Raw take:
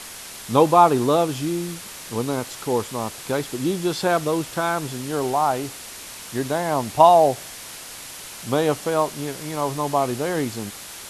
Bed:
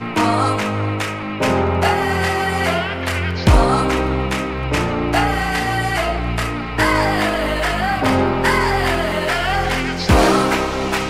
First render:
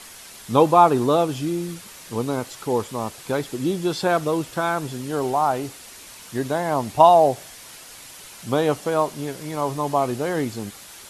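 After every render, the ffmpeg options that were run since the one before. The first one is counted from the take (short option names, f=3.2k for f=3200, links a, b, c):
-af "afftdn=nr=6:nf=-38"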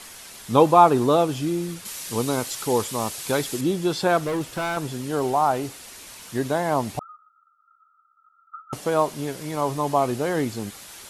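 -filter_complex "[0:a]asettb=1/sr,asplit=3[a][b][c];[a]atrim=end=1.854[d];[b]atrim=start=1.85:end=3.61,asetpts=PTS-STARTPTS,afade=t=in:d=0.004:c=qsin,afade=t=out:st=1.756:d=0.004:c=qsin,highshelf=f=2.7k:g=9.5[e];[c]atrim=start=3.606[f];[d][e]acrossfade=d=0.004:c1=hsin:c2=qsin[g];[g][f]acrossfade=d=0.004:c1=qsin:c2=hsin,asettb=1/sr,asplit=3[h][i][j];[h]atrim=end=4.224[k];[i]atrim=start=4.22:end=4.77,asetpts=PTS-STARTPTS,afade=t=in:d=0.004:c=qsin,afade=t=out:st=0.546:d=0.004:c=qsin,asoftclip=type=hard:threshold=-22.5dB[l];[j]atrim=start=4.766[m];[k][l]acrossfade=d=0.004:c1=hsin:c2=qsin[n];[n][m]acrossfade=d=0.004:c1=qsin:c2=hsin,asettb=1/sr,asplit=3[o][p][q];[o]atrim=end=6.994[r];[p]atrim=start=6.99:end=8.73,asetpts=PTS-STARTPTS,afade=t=in:d=0.004:c=qsin,afade=t=out:st=1.736:d=0.004:c=qsin,asuperpass=centerf=1300:order=12:qfactor=7.9[s];[q]atrim=start=8.726[t];[r][s]acrossfade=d=0.004:c1=hsin:c2=qsin[u];[u][t]acrossfade=d=0.004:c1=qsin:c2=hsin"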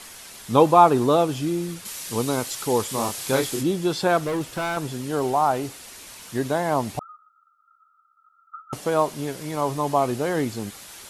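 -filter_complex "[0:a]asettb=1/sr,asplit=3[a][b][c];[a]atrim=end=2.874[d];[b]atrim=start=2.87:end=3.63,asetpts=PTS-STARTPTS,afade=t=in:d=0.004:c=qsin,afade=t=out:st=0.756:d=0.004:c=qsin,asplit=2[e][f];[f]adelay=30,volume=-4dB[g];[e][g]amix=inputs=2:normalize=0,atrim=end_sample=33516[h];[c]atrim=start=3.626[i];[d][h]acrossfade=d=0.004:c1=hsin:c2=qsin[j];[j][i]acrossfade=d=0.004:c1=qsin:c2=hsin"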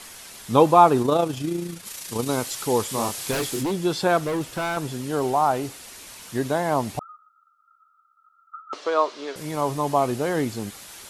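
-filter_complex "[0:a]asettb=1/sr,asplit=3[a][b][c];[a]atrim=end=1.024[d];[b]atrim=start=1.02:end=2.29,asetpts=PTS-STARTPTS,afade=t=in:d=0.004:c=qsin,afade=t=out:st=1.266:d=0.004:c=qsin,tremolo=f=28:d=0.462[e];[c]atrim=start=2.286[f];[d][e]acrossfade=d=0.004:c1=hsin:c2=qsin[g];[g][f]acrossfade=d=0.004:c1=qsin:c2=hsin,asettb=1/sr,asplit=3[h][i][j];[h]atrim=end=3.314[k];[i]atrim=start=3.31:end=3.72,asetpts=PTS-STARTPTS,afade=t=in:d=0.004:c=qsin,afade=t=out:st=0.406:d=0.004:c=qsin,aeval=exprs='0.106*(abs(mod(val(0)/0.106+3,4)-2)-1)':c=same[l];[j]atrim=start=3.716[m];[k][l]acrossfade=d=0.004:c1=hsin:c2=qsin[n];[n][m]acrossfade=d=0.004:c1=qsin:c2=hsin,asettb=1/sr,asplit=3[o][p][q];[o]atrim=end=8.624[r];[p]atrim=start=8.62:end=9.36,asetpts=PTS-STARTPTS,afade=t=in:d=0.004:c=qsin,afade=t=out:st=0.736:d=0.004:c=qsin,highpass=f=350:w=0.5412,highpass=f=350:w=1.3066,equalizer=f=780:t=q:w=4:g=-5,equalizer=f=1.2k:t=q:w=4:g=6,equalizer=f=4k:t=q:w=4:g=4,lowpass=f=5.7k:w=0.5412,lowpass=f=5.7k:w=1.3066[s];[q]atrim=start=9.356[t];[r][s]acrossfade=d=0.004:c1=hsin:c2=qsin[u];[u][t]acrossfade=d=0.004:c1=qsin:c2=hsin"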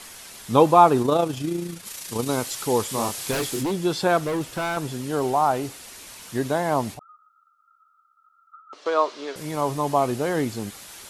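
-filter_complex "[0:a]asettb=1/sr,asplit=3[a][b][c];[a]atrim=end=6.944[d];[b]atrim=start=6.94:end=8.86,asetpts=PTS-STARTPTS,afade=t=in:d=0.004:c=qsin,afade=t=out:st=1.916:d=0.004:c=qsin,acompressor=threshold=-56dB:ratio=1.5:attack=3.2:release=140:knee=1:detection=peak[e];[c]atrim=start=8.856[f];[d][e]acrossfade=d=0.004:c1=hsin:c2=qsin[g];[g][f]acrossfade=d=0.004:c1=qsin:c2=hsin"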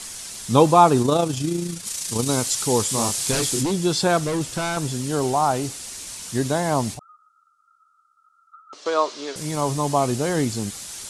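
-af "lowpass=f=9.8k:w=0.5412,lowpass=f=9.8k:w=1.3066,bass=f=250:g=6,treble=f=4k:g=11"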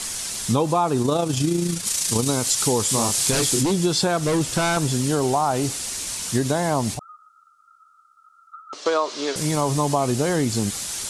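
-filter_complex "[0:a]asplit=2[a][b];[b]alimiter=limit=-12dB:level=0:latency=1:release=88,volume=0dB[c];[a][c]amix=inputs=2:normalize=0,acompressor=threshold=-17dB:ratio=6"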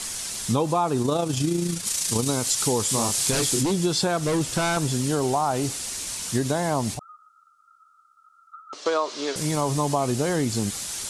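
-af "volume=-2.5dB"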